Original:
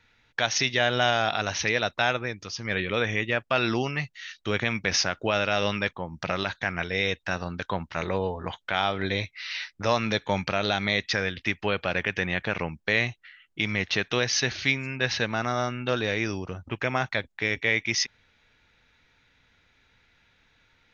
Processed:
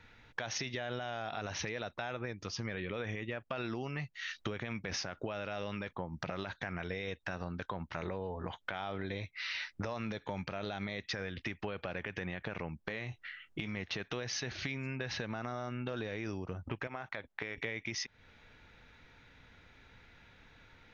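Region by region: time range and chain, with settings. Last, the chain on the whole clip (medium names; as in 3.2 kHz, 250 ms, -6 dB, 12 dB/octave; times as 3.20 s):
12.84–13.77 s: compression 2.5:1, threshold -35 dBFS + doubling 23 ms -11.5 dB
16.87–17.58 s: low-pass 2.6 kHz 6 dB/octave + bass shelf 370 Hz -11.5 dB + compression 5:1, threshold -33 dBFS
whole clip: treble shelf 2 kHz -8.5 dB; peak limiter -20.5 dBFS; compression 6:1, threshold -43 dBFS; trim +7 dB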